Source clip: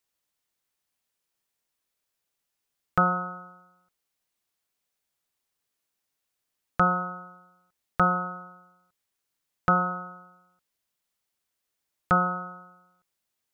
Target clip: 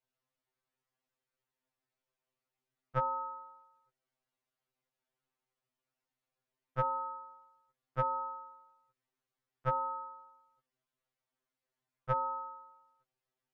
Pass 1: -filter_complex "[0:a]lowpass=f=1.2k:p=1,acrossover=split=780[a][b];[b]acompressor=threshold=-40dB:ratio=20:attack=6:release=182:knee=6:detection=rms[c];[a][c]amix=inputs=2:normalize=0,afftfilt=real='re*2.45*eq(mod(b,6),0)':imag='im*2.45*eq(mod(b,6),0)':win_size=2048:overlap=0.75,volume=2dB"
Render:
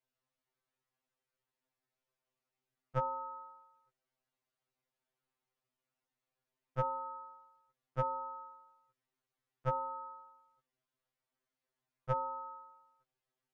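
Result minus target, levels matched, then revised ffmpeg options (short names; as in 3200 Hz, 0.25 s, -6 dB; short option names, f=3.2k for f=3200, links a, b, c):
compressor: peak gain reduction +7.5 dB
-filter_complex "[0:a]lowpass=f=1.2k:p=1,acrossover=split=780[a][b];[b]acompressor=threshold=-32dB:ratio=20:attack=6:release=182:knee=6:detection=rms[c];[a][c]amix=inputs=2:normalize=0,afftfilt=real='re*2.45*eq(mod(b,6),0)':imag='im*2.45*eq(mod(b,6),0)':win_size=2048:overlap=0.75,volume=2dB"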